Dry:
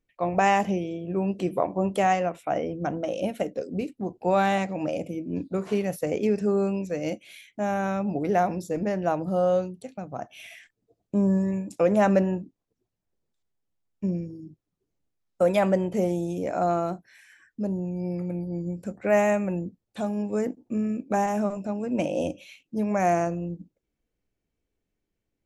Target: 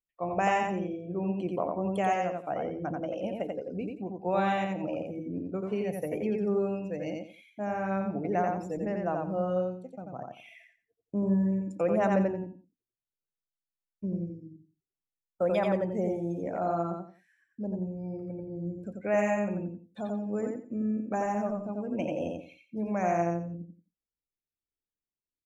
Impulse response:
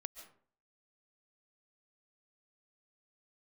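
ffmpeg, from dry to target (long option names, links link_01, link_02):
-af "afftdn=noise_reduction=16:noise_floor=-42,aecho=1:1:88|176|264:0.708|0.17|0.0408,volume=-6.5dB"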